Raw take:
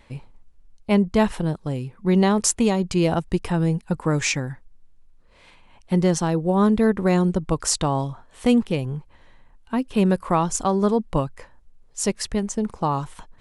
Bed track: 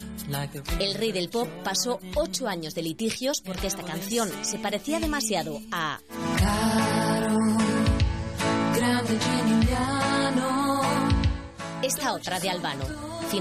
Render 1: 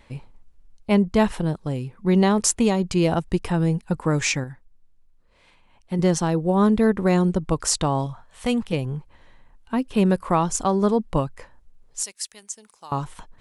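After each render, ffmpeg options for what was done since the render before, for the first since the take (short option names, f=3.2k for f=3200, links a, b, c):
-filter_complex "[0:a]asettb=1/sr,asplit=3[a][b][c];[a]atrim=end=8.064[d];[b]atrim=start=8.06:end=8.73,asetpts=PTS-STARTPTS,afade=t=in:d=0.004:c=qsin,afade=t=out:st=0.666:d=0.004:c=qsin,equalizer=f=330:t=o:w=0.77:g=-13.5[e];[c]atrim=start=8.726[f];[d][e]acrossfade=d=0.004:c1=hsin:c2=qsin[g];[g][f]acrossfade=d=0.004:c1=qsin:c2=hsin,asettb=1/sr,asplit=3[h][i][j];[h]atrim=end=12.034[k];[i]atrim=start=12.03:end=12.92,asetpts=PTS-STARTPTS,afade=t=in:d=0.004:c=qsin,afade=t=out:st=0.886:d=0.004:c=qsin,aderivative[l];[j]atrim=start=12.916[m];[k][l]acrossfade=d=0.004:c1=hsin:c2=qsin[n];[n][m]acrossfade=d=0.004:c1=qsin:c2=hsin,asplit=3[o][p][q];[o]atrim=end=4.442[r];[p]atrim=start=4.438:end=5.992,asetpts=PTS-STARTPTS,volume=-5.5dB[s];[q]atrim=start=5.988[t];[r][s]acrossfade=d=0.004:c1=hsin:c2=hsin[u];[u][t]acrossfade=d=0.004:c1=hsin:c2=hsin"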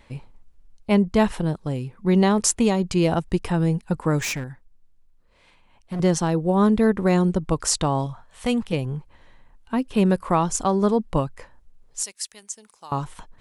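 -filter_complex "[0:a]asettb=1/sr,asplit=3[a][b][c];[a]atrim=end=4.204[d];[b]atrim=start=4.2:end=6,asetpts=PTS-STARTPTS,afade=t=in:d=0.004:c=qsin,afade=t=out:st=1.796:d=0.004:c=qsin,asoftclip=type=hard:threshold=-24.5dB[e];[c]atrim=start=5.996[f];[d][e]acrossfade=d=0.004:c1=hsin:c2=qsin[g];[g][f]acrossfade=d=0.004:c1=qsin:c2=hsin"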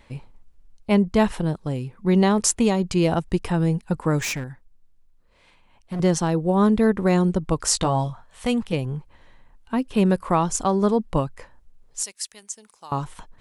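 -filter_complex "[0:a]asettb=1/sr,asplit=3[a][b][c];[a]atrim=end=7.664[d];[b]atrim=start=7.66:end=8.1,asetpts=PTS-STARTPTS,afade=t=in:d=0.004:c=qsin,afade=t=out:st=0.436:d=0.004:c=qsin,asplit=2[e][f];[f]adelay=16,volume=-6dB[g];[e][g]amix=inputs=2:normalize=0,atrim=end_sample=19404[h];[c]atrim=start=8.096[i];[d][h]acrossfade=d=0.004:c1=hsin:c2=qsin[j];[j][i]acrossfade=d=0.004:c1=qsin:c2=hsin"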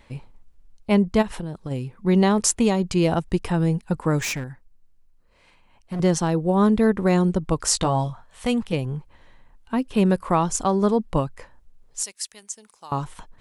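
-filter_complex "[0:a]asplit=3[a][b][c];[a]afade=t=out:st=1.21:d=0.02[d];[b]acompressor=threshold=-26dB:ratio=6:attack=3.2:release=140:knee=1:detection=peak,afade=t=in:st=1.21:d=0.02,afade=t=out:st=1.7:d=0.02[e];[c]afade=t=in:st=1.7:d=0.02[f];[d][e][f]amix=inputs=3:normalize=0,asettb=1/sr,asplit=3[g][h][i];[g]atrim=end=4.484[j];[h]atrim=start=4.48:end=5.94,asetpts=PTS-STARTPTS,afade=t=in:d=0.004:c=qsin,afade=t=out:st=1.456:d=0.004:c=qsin,bandreject=f=3.5k:w=12[k];[i]atrim=start=5.936[l];[j][k]acrossfade=d=0.004:c1=hsin:c2=qsin[m];[m][l]acrossfade=d=0.004:c1=qsin:c2=hsin"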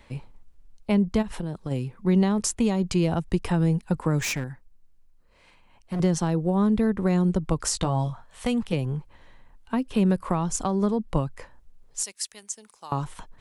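-filter_complex "[0:a]acrossover=split=210[a][b];[b]acompressor=threshold=-24dB:ratio=6[c];[a][c]amix=inputs=2:normalize=0"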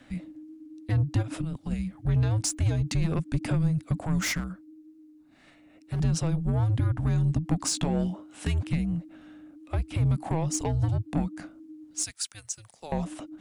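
-af "asoftclip=type=tanh:threshold=-18.5dB,afreqshift=-320"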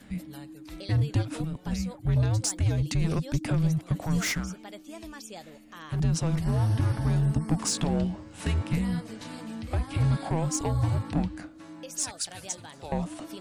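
-filter_complex "[1:a]volume=-16.5dB[a];[0:a][a]amix=inputs=2:normalize=0"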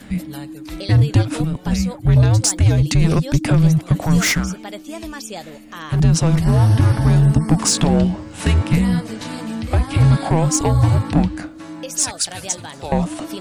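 -af "volume=11.5dB,alimiter=limit=-3dB:level=0:latency=1"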